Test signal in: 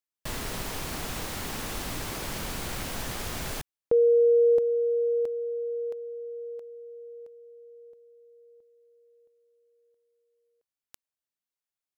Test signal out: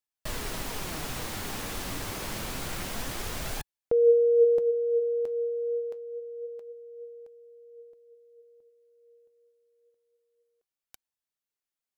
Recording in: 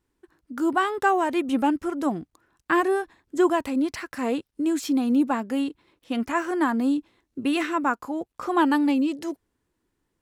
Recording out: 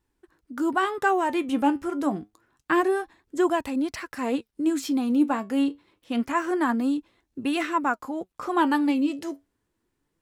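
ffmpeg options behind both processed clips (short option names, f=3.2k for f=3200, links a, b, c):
-af "flanger=delay=1.1:depth=9.7:regen=68:speed=0.27:shape=sinusoidal,volume=3.5dB"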